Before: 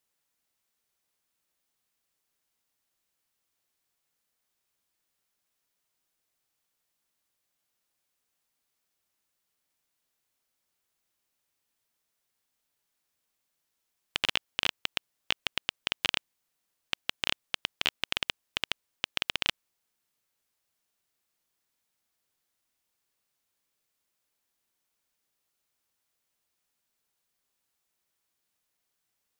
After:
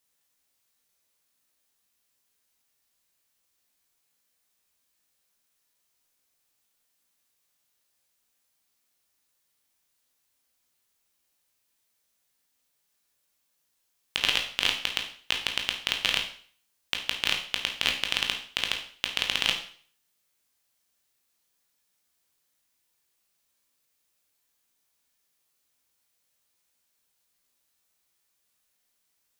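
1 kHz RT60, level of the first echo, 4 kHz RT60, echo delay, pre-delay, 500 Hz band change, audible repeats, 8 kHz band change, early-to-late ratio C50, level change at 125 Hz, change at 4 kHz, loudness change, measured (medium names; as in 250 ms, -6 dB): 0.45 s, no echo, 0.50 s, no echo, 16 ms, +2.5 dB, no echo, +6.5 dB, 7.5 dB, +2.5 dB, +4.5 dB, +4.5 dB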